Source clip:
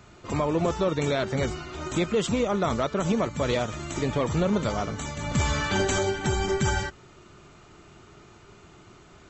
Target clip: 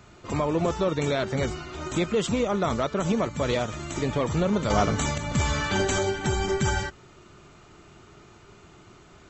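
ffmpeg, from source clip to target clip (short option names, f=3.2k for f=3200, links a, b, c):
-filter_complex "[0:a]asettb=1/sr,asplit=3[a][b][c];[a]atrim=end=4.704[d];[b]atrim=start=4.7:end=5.18,asetpts=PTS-STARTPTS,afade=t=in:d=0.004:c=qsin,afade=t=out:st=0.476:d=0.004:c=qsin,acontrast=87[e];[c]atrim=start=5.176[f];[d][e]acrossfade=d=0.004:c1=hsin:c2=qsin[g];[g][f]acrossfade=d=0.004:c1=qsin:c2=hsin"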